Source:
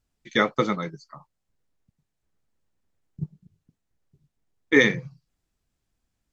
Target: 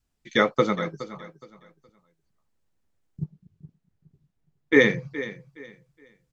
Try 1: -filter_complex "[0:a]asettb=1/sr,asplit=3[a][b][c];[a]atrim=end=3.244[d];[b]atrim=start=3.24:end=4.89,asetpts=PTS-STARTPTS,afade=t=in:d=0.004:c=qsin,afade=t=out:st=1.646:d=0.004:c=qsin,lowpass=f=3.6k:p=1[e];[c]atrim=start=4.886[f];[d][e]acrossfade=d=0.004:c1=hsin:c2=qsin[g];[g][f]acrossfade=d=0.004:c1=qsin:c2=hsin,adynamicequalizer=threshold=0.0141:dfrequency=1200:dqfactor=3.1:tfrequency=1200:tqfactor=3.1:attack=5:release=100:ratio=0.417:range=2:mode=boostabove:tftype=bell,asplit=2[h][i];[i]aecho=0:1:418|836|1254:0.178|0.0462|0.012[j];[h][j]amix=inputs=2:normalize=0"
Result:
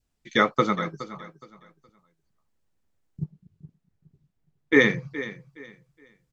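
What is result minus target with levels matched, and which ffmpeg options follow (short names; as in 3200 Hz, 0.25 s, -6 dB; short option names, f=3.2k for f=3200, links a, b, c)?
1000 Hz band +4.0 dB
-filter_complex "[0:a]asettb=1/sr,asplit=3[a][b][c];[a]atrim=end=3.244[d];[b]atrim=start=3.24:end=4.89,asetpts=PTS-STARTPTS,afade=t=in:d=0.004:c=qsin,afade=t=out:st=1.646:d=0.004:c=qsin,lowpass=f=3.6k:p=1[e];[c]atrim=start=4.886[f];[d][e]acrossfade=d=0.004:c1=hsin:c2=qsin[g];[g][f]acrossfade=d=0.004:c1=qsin:c2=hsin,adynamicequalizer=threshold=0.0141:dfrequency=510:dqfactor=3.1:tfrequency=510:tqfactor=3.1:attack=5:release=100:ratio=0.417:range=2:mode=boostabove:tftype=bell,asplit=2[h][i];[i]aecho=0:1:418|836|1254:0.178|0.0462|0.012[j];[h][j]amix=inputs=2:normalize=0"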